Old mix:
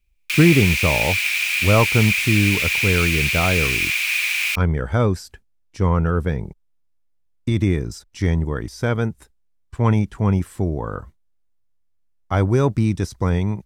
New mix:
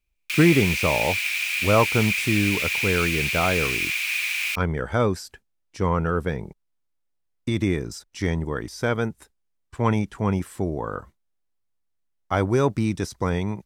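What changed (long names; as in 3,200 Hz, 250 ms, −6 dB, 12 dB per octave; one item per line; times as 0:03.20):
background −4.5 dB
master: add low-shelf EQ 150 Hz −11 dB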